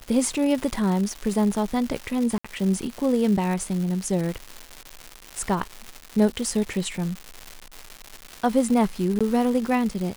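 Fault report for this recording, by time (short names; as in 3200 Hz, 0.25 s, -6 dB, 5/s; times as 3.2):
crackle 330/s -28 dBFS
2.38–2.44 gap 65 ms
9.19–9.21 gap 16 ms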